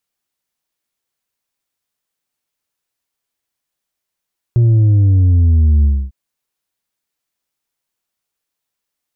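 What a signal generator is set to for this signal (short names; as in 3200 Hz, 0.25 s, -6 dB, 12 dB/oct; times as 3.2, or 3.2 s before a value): sub drop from 120 Hz, over 1.55 s, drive 4 dB, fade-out 0.27 s, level -8 dB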